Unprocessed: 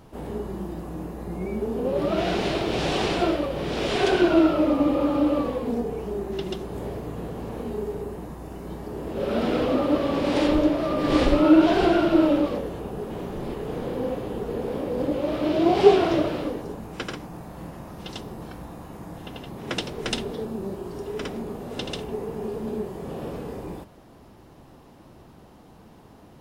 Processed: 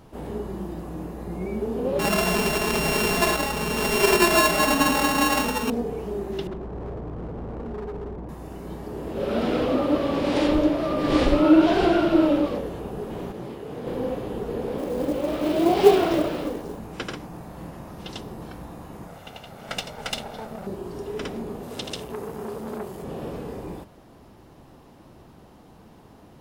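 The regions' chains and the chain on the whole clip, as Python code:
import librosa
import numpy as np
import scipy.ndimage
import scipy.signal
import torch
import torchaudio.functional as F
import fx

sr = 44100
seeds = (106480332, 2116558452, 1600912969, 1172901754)

y = fx.chain(x, sr, fx.sample_sort(block=32),
    fx.comb(ms=4.7, depth=0.87), at=(1.99, 5.7))
y = fx.chain(y, sr, fx.lowpass(hz=1100.0, slope=12),
    fx.low_shelf(hz=61.0, db=10.5),
    fx.clip_hard(threshold_db=-30.0), at=(6.47, 8.29))
y = fx.chain(y, sr, fx.highpass(hz=82.0, slope=12),
    fx.detune_double(cents=56), at=(13.32, 13.87))
y = fx.chain(y, sr, fx.peak_eq(hz=110.0, db=-11.0, octaves=0.32),
    fx.quant_companded(bits=6), at=(14.78, 16.79))
y = fx.chain(y, sr, fx.lower_of_two(delay_ms=1.4),
    fx.low_shelf(hz=170.0, db=-8.0), at=(19.07, 20.67))
y = fx.chain(y, sr, fx.highpass(hz=46.0, slope=12),
    fx.high_shelf(hz=4700.0, db=9.0),
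    fx.transformer_sat(knee_hz=1500.0), at=(21.63, 23.04))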